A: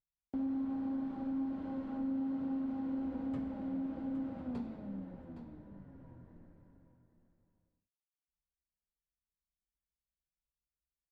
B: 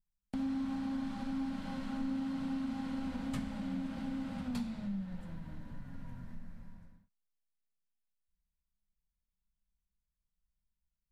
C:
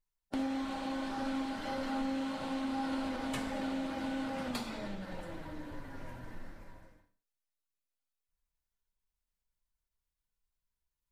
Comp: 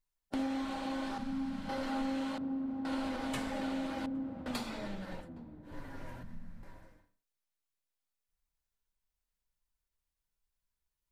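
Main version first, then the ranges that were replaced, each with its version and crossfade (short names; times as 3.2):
C
1.18–1.69 from B
2.38–2.85 from A
4.06–4.46 from A
5.22–5.7 from A, crossfade 0.16 s
6.23–6.63 from B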